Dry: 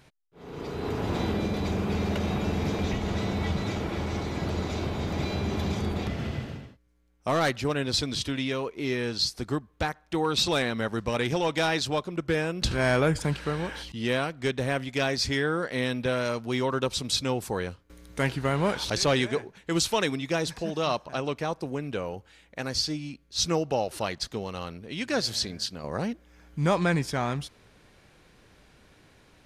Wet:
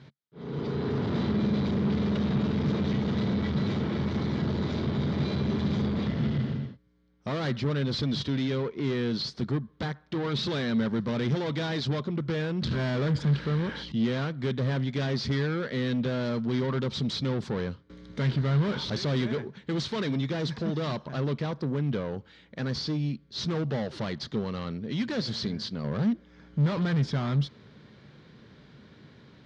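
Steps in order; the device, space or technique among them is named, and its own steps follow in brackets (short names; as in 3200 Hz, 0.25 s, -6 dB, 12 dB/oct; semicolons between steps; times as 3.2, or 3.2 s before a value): guitar amplifier (tube stage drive 32 dB, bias 0.3; tone controls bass +4 dB, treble +12 dB; speaker cabinet 96–3700 Hz, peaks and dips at 140 Hz +8 dB, 220 Hz +8 dB, 410 Hz +3 dB, 750 Hz -5 dB, 2600 Hz -8 dB); gain +2.5 dB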